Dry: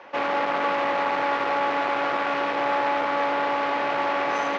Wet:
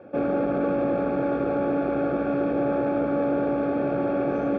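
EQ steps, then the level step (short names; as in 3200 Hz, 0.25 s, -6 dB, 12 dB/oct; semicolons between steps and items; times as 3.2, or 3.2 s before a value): running mean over 45 samples; low shelf 330 Hz +11 dB; +5.0 dB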